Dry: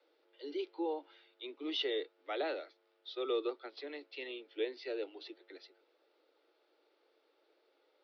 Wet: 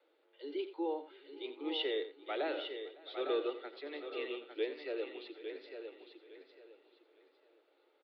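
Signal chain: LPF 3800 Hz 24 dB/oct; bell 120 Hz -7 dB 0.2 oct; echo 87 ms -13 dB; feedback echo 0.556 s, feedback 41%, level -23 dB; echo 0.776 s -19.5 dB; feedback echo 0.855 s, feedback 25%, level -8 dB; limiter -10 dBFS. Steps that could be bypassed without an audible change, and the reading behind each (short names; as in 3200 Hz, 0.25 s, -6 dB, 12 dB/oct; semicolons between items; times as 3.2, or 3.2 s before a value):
bell 120 Hz: input band starts at 240 Hz; limiter -10 dBFS: input peak -23.5 dBFS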